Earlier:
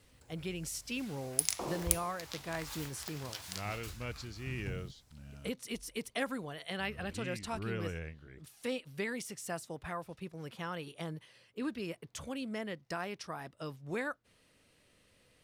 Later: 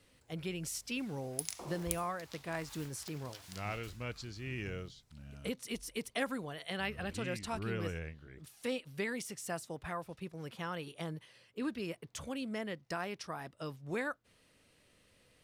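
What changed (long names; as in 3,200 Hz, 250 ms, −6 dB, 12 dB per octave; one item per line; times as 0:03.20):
background −9.0 dB
reverb: on, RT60 0.45 s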